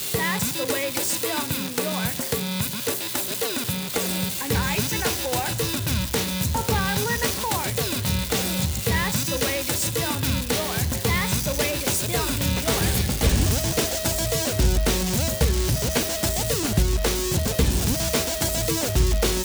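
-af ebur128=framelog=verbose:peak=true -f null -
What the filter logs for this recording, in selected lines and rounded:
Integrated loudness:
  I:         -23.1 LUFS
  Threshold: -33.1 LUFS
Loudness range:
  LRA:         2.4 LU
  Threshold: -43.1 LUFS
  LRA low:   -24.4 LUFS
  LRA high:  -22.0 LUFS
True peak:
  Peak:       -8.1 dBFS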